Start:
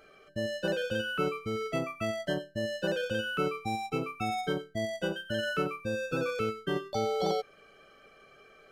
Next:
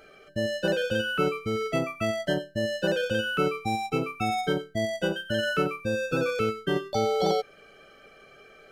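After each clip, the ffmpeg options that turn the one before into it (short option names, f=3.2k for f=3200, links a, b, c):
-af "bandreject=f=1.1k:w=7.8,volume=5dB"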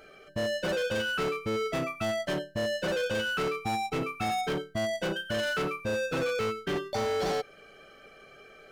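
-af "asoftclip=type=hard:threshold=-27dB"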